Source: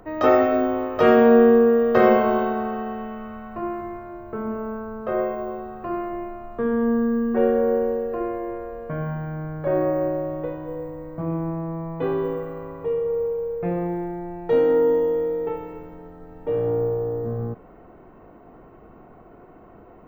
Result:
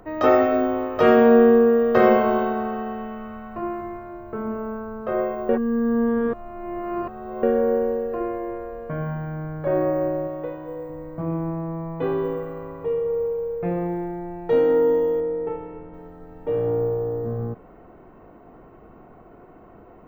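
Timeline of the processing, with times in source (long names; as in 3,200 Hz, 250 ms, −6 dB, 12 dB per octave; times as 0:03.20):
0:05.49–0:07.43: reverse
0:10.27–0:10.90: low-shelf EQ 200 Hz −8.5 dB
0:15.20–0:15.94: high-frequency loss of the air 350 metres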